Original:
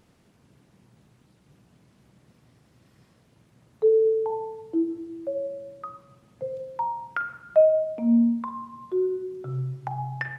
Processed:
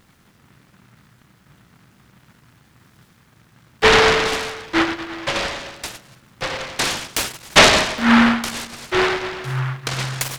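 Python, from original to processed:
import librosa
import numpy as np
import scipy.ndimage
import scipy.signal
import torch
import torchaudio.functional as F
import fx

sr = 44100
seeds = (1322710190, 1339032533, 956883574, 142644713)

y = fx.noise_mod_delay(x, sr, seeds[0], noise_hz=1300.0, depth_ms=0.42)
y = y * librosa.db_to_amplitude(6.5)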